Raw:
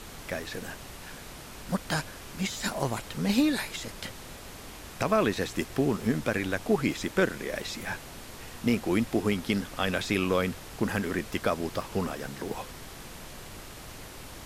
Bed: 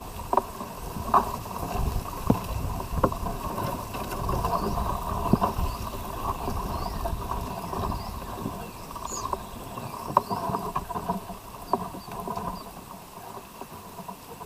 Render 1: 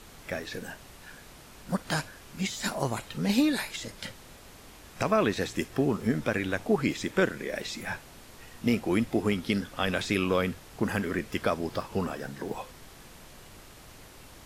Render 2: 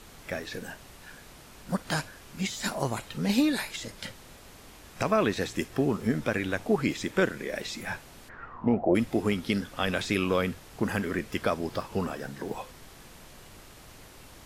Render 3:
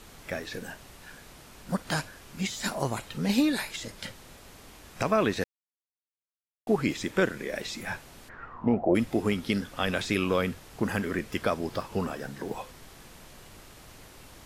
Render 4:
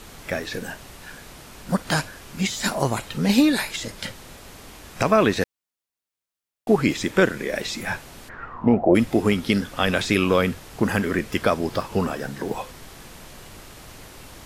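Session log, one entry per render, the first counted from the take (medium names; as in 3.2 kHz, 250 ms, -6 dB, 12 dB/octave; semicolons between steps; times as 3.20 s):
noise print and reduce 6 dB
8.28–8.94 s: resonant low-pass 1.8 kHz -> 570 Hz, resonance Q 8.8
5.44–6.67 s: mute
trim +7 dB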